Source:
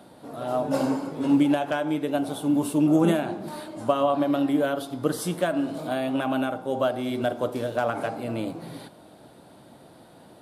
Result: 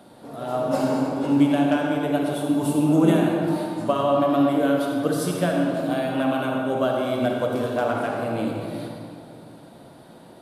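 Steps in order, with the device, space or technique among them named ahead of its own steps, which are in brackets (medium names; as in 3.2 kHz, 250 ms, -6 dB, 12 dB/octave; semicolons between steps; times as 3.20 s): stairwell (reverberation RT60 2.3 s, pre-delay 47 ms, DRR 0 dB)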